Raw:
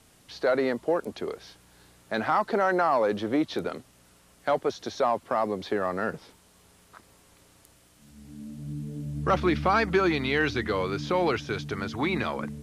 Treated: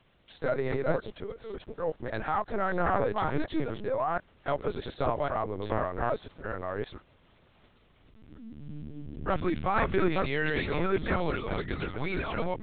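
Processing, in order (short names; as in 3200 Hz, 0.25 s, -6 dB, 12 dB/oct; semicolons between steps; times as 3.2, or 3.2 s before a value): reverse delay 0.697 s, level -1 dB; LPC vocoder at 8 kHz pitch kept; gain -5 dB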